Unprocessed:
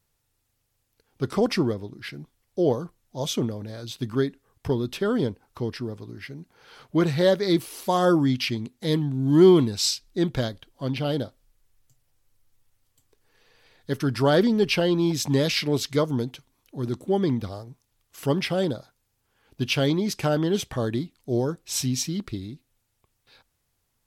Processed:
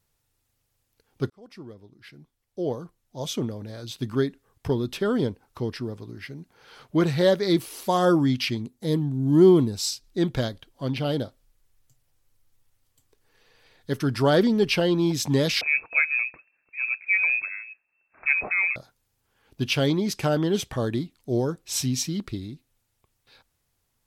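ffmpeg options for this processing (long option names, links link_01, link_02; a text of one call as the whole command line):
ffmpeg -i in.wav -filter_complex "[0:a]asettb=1/sr,asplit=3[link_01][link_02][link_03];[link_01]atrim=end=8.624[link_04];[link_02]atrim=start=8.62:end=10.04,asetpts=PTS-STARTPTS,afade=type=in:duration=0.004:curve=qsin,afade=type=out:start_time=1.416:duration=0.004:curve=qsin,equalizer=frequency=2500:width_type=o:width=2.3:gain=-8[link_05];[link_03]atrim=start=10.036[link_06];[link_04][link_05]acrossfade=duration=0.004:curve1=hsin:curve2=qsin[link_07];[link_07][link_06]acrossfade=duration=0.004:curve1=qsin:curve2=hsin,asettb=1/sr,asplit=3[link_08][link_09][link_10];[link_08]atrim=end=15.614[link_11];[link_09]atrim=start=15.61:end=18.76,asetpts=PTS-STARTPTS,afade=type=in:duration=0.004:curve=qsin,afade=type=out:start_time=3.146:duration=0.004:curve=qsin,lowpass=frequency=2300:width_type=q:width=0.5098,lowpass=frequency=2300:width_type=q:width=0.6013,lowpass=frequency=2300:width_type=q:width=0.9,lowpass=frequency=2300:width_type=q:width=2.563,afreqshift=-2700[link_12];[link_10]atrim=start=18.756[link_13];[link_11][link_12]acrossfade=duration=0.004:curve1=hsin:curve2=qsin[link_14];[link_14][link_13]acrossfade=duration=0.004:curve1=qsin:curve2=hsin,asplit=2[link_15][link_16];[link_15]atrim=end=1.3,asetpts=PTS-STARTPTS,afade=type=out:start_time=1.296:duration=0.004:curve=hsin[link_17];[link_16]atrim=start=1.3,asetpts=PTS-STARTPTS,afade=type=in:duration=2.77[link_18];[link_17][link_18]concat=n=2:v=0:a=1" out.wav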